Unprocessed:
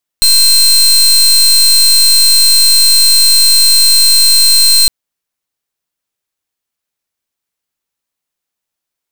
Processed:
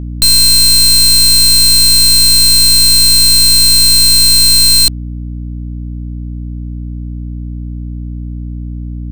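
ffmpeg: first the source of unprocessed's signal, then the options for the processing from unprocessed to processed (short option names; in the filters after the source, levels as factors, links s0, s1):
-f lavfi -i "aevalsrc='0.473*(2*lt(mod(4150*t,1),0.28)-1)':d=4.66:s=44100"
-af "aeval=exprs='val(0)+0.1*(sin(2*PI*60*n/s)+sin(2*PI*2*60*n/s)/2+sin(2*PI*3*60*n/s)/3+sin(2*PI*4*60*n/s)/4+sin(2*PI*5*60*n/s)/5)':c=same"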